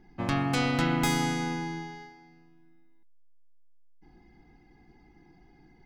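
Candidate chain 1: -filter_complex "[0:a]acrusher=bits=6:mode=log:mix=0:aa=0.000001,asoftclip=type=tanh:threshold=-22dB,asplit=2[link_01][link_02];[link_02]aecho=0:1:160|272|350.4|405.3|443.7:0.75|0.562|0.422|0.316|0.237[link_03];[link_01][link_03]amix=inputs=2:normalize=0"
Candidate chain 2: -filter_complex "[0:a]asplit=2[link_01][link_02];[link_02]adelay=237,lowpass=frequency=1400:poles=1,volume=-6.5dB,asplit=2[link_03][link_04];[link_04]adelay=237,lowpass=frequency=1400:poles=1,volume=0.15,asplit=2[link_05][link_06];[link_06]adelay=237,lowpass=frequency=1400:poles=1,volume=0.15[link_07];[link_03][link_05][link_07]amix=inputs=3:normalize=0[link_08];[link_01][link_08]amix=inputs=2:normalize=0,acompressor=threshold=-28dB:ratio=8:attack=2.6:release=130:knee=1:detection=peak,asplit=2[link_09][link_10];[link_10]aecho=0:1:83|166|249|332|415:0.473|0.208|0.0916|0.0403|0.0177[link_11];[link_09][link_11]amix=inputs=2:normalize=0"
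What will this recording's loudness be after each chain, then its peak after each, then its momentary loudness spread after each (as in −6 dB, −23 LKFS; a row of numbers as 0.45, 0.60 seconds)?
−28.5, −33.0 LKFS; −15.0, −20.0 dBFS; 12, 12 LU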